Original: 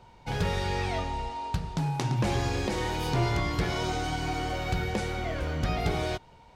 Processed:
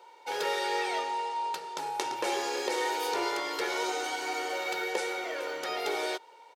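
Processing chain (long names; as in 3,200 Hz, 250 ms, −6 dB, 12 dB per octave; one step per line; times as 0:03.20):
high-pass filter 380 Hz 24 dB per octave
high-shelf EQ 9,700 Hz +6 dB
comb filter 2.2 ms, depth 53%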